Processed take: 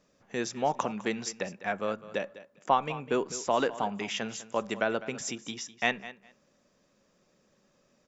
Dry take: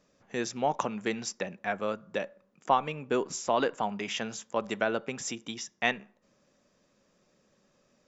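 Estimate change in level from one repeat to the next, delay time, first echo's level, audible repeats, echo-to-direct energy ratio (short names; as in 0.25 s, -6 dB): -16.0 dB, 0.203 s, -16.0 dB, 2, -16.0 dB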